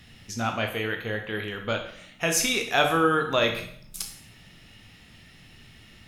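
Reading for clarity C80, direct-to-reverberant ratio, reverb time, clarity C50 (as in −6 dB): 11.0 dB, 3.0 dB, 0.65 s, 7.5 dB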